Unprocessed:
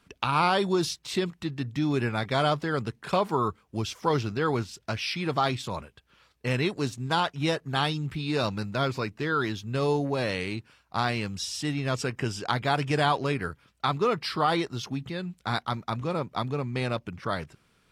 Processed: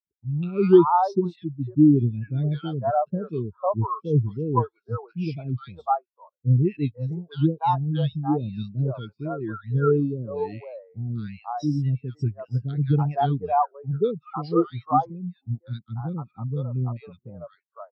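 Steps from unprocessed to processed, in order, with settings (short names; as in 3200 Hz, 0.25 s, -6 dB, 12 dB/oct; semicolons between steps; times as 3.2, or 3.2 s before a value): three bands offset in time lows, highs, mids 0.2/0.5 s, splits 480/1500 Hz; spectral expander 2.5:1; gain +8.5 dB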